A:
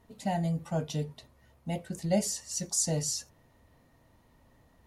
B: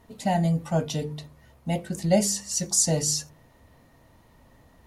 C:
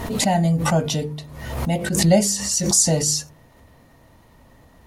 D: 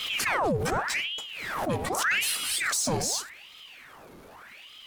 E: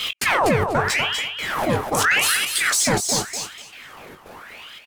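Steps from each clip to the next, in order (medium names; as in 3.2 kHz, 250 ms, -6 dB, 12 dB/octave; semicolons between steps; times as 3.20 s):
de-hum 50.02 Hz, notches 10; trim +7 dB
swell ahead of each attack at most 49 dB/s; trim +4.5 dB
peak limiter -11 dBFS, peak gain reduction 6.5 dB; power-law waveshaper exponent 0.7; ring modulator with a swept carrier 1.7 kHz, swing 85%, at 0.84 Hz; trim -6 dB
trance gate "x.xxxx.xxxx" 141 bpm -60 dB; doubling 21 ms -9.5 dB; feedback delay 245 ms, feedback 17%, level -6.5 dB; trim +7 dB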